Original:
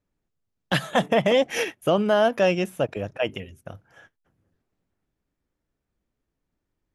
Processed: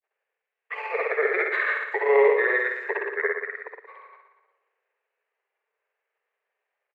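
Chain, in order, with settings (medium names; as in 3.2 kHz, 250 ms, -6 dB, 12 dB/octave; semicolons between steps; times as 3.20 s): steep high-pass 620 Hz 96 dB/octave; high-order bell 3.2 kHz +10 dB 1 oct; in parallel at -2.5 dB: compression, threshold -34 dBFS, peak gain reduction 17.5 dB; on the sum: peak limiter -12.5 dBFS, peak gain reduction 8.5 dB; granulator, pitch spread up and down by 0 st; on a send: flutter echo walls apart 10.1 m, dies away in 1 s; on the sum: pitch shift -7 st; distance through air 490 m; trim +3 dB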